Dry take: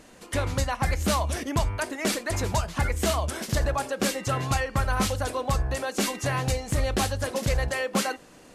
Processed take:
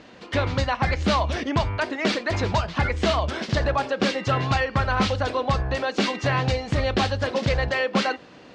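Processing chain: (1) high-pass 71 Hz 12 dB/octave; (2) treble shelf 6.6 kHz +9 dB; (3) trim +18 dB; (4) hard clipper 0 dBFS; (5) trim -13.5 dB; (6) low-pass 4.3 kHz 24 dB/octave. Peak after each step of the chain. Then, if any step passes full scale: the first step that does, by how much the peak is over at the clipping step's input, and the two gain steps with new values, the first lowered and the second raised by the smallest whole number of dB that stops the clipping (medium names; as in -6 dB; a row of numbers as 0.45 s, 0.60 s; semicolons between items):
-12.5 dBFS, -11.0 dBFS, +7.0 dBFS, 0.0 dBFS, -13.5 dBFS, -12.0 dBFS; step 3, 7.0 dB; step 3 +11 dB, step 5 -6.5 dB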